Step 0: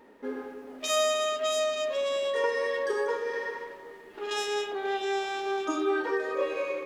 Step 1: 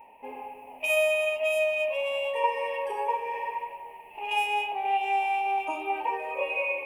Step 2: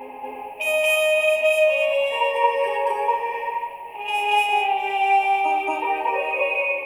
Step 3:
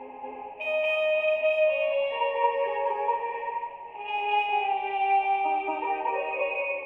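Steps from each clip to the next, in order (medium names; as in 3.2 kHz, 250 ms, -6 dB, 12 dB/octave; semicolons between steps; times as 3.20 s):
FFT filter 120 Hz 0 dB, 250 Hz -12 dB, 370 Hz -13 dB, 910 Hz +13 dB, 1.4 kHz -25 dB, 2.6 kHz +15 dB, 3.7 kHz -18 dB, 6.8 kHz -16 dB, 10 kHz +5 dB
reverse echo 230 ms -3.5 dB; trim +6 dB
distance through air 310 m; trim -4 dB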